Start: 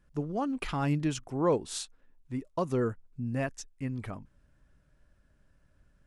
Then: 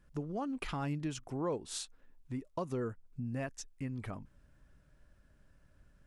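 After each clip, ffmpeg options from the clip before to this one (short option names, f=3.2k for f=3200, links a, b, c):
-af "acompressor=threshold=-41dB:ratio=2,volume=1dB"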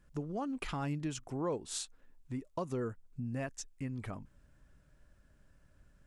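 -af "equalizer=f=7.4k:w=2.6:g=3.5"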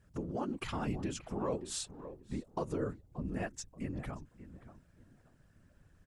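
-filter_complex "[0:a]asplit=2[a][b];[b]adelay=579,lowpass=f=1.6k:p=1,volume=-13dB,asplit=2[c][d];[d]adelay=579,lowpass=f=1.6k:p=1,volume=0.26,asplit=2[e][f];[f]adelay=579,lowpass=f=1.6k:p=1,volume=0.26[g];[a][c][e][g]amix=inputs=4:normalize=0,afftfilt=real='hypot(re,im)*cos(2*PI*random(0))':imag='hypot(re,im)*sin(2*PI*random(1))':win_size=512:overlap=0.75,volume=6dB"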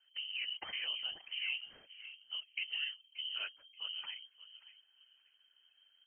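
-filter_complex "[0:a]asplit=2[a][b];[b]aeval=exprs='sgn(val(0))*max(abs(val(0))-0.00316,0)':c=same,volume=-8.5dB[c];[a][c]amix=inputs=2:normalize=0,lowpass=f=2.7k:t=q:w=0.5098,lowpass=f=2.7k:t=q:w=0.6013,lowpass=f=2.7k:t=q:w=0.9,lowpass=f=2.7k:t=q:w=2.563,afreqshift=-3200,volume=-6dB"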